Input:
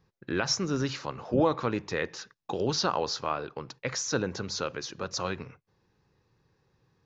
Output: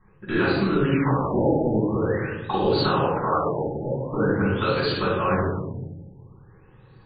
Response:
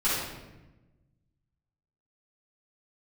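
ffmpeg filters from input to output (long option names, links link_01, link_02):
-filter_complex "[0:a]acompressor=threshold=-33dB:ratio=6[link_01];[1:a]atrim=start_sample=2205[link_02];[link_01][link_02]afir=irnorm=-1:irlink=0,afftfilt=real='re*lt(b*sr/1024,860*pow(4800/860,0.5+0.5*sin(2*PI*0.46*pts/sr)))':imag='im*lt(b*sr/1024,860*pow(4800/860,0.5+0.5*sin(2*PI*0.46*pts/sr)))':win_size=1024:overlap=0.75,volume=4dB"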